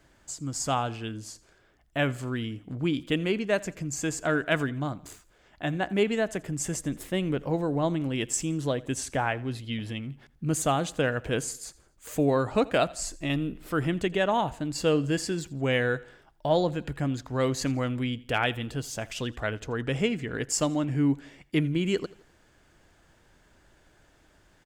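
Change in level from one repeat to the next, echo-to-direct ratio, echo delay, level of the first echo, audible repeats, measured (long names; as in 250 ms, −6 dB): −7.0 dB, −21.0 dB, 84 ms, −22.0 dB, 2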